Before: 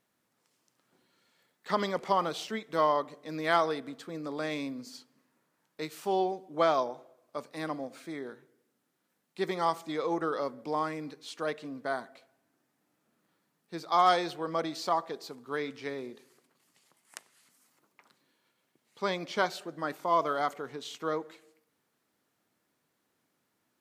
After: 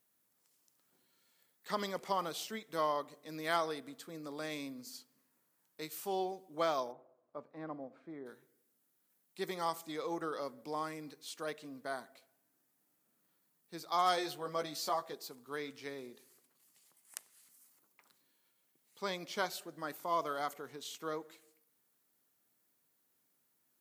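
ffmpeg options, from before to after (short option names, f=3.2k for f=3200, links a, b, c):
-filter_complex "[0:a]asplit=3[a][b][c];[a]afade=t=out:st=6.91:d=0.02[d];[b]lowpass=1.2k,afade=t=in:st=6.91:d=0.02,afade=t=out:st=8.25:d=0.02[e];[c]afade=t=in:st=8.25:d=0.02[f];[d][e][f]amix=inputs=3:normalize=0,asettb=1/sr,asplit=3[g][h][i];[g]atrim=end=14.164[j];[h]atrim=start=14.16:end=15.14,asetpts=PTS-STARTPTS,afade=t=in:d=0.004:c=qsin,afade=t=out:st=0.976:d=0.004:c=qsin,asplit=2[k][l];[l]adelay=14,volume=-4dB[m];[k][m]amix=inputs=2:normalize=0,atrim=end_sample=43218[n];[i]atrim=start=15.136[o];[j][n]acrossfade=d=0.004:c1=hsin:c2=qsin[p];[p][o]acrossfade=d=0.004:c1=qsin:c2=hsin,aemphasis=mode=production:type=50fm,volume=-7.5dB"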